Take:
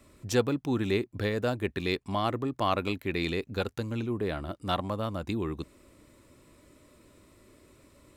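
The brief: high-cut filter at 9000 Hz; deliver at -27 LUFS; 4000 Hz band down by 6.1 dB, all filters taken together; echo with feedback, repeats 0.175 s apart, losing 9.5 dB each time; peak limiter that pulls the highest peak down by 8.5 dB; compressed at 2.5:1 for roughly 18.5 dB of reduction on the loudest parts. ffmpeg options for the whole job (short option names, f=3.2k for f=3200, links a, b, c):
-af "lowpass=9k,equalizer=f=4k:t=o:g=-7.5,acompressor=threshold=-49dB:ratio=2.5,alimiter=level_in=15.5dB:limit=-24dB:level=0:latency=1,volume=-15.5dB,aecho=1:1:175|350|525|700:0.335|0.111|0.0365|0.012,volume=23.5dB"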